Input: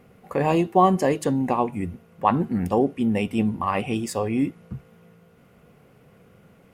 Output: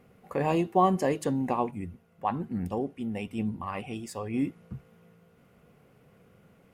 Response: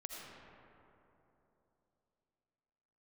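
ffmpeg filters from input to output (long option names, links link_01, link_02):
-filter_complex "[0:a]asettb=1/sr,asplit=3[link_01][link_02][link_03];[link_01]atrim=end=1.714[link_04];[link_02]atrim=start=1.71:end=4.34,asetpts=PTS-STARTPTS,afade=type=in:duration=0.004:curve=qsin,afade=type=out:start_time=2.626:duration=0.004:curve=qsin,flanger=delay=0.2:depth=1.3:regen=68:speed=1.1:shape=sinusoidal[link_05];[link_03]atrim=start=4.336[link_06];[link_04][link_05]acrossfade=duration=0.004:curve1=hsin:curve2=qsin[link_07];[link_07][link_06]acrossfade=duration=0.004:curve1=qsin:curve2=hsin,volume=-5.5dB"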